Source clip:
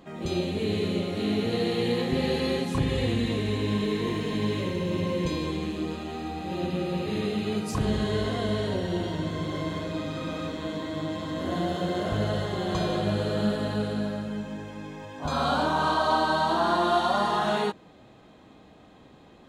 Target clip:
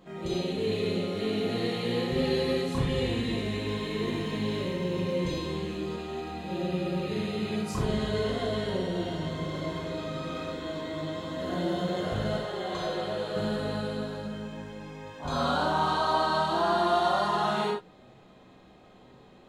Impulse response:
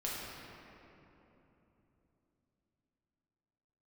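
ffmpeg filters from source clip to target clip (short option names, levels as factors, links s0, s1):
-filter_complex "[0:a]asettb=1/sr,asplit=3[s0][s1][s2];[s0]atrim=end=12.374[s3];[s1]atrim=start=12.37:end=13.36,asetpts=PTS-STARTPTS,afade=t=in:d=0.004:c=qsin,afade=t=out:st=0.986:d=0.004:c=qsin,bass=f=250:g=-12,treble=f=4000:g=-3[s4];[s2]atrim=start=13.356[s5];[s3][s4]acrossfade=d=0.004:c1=hsin:c2=qsin[s6];[s6][s5]acrossfade=d=0.004:c1=qsin:c2=hsin[s7];[1:a]atrim=start_sample=2205,afade=t=out:st=0.14:d=0.01,atrim=end_sample=6615[s8];[s7][s8]afir=irnorm=-1:irlink=0,volume=0.794"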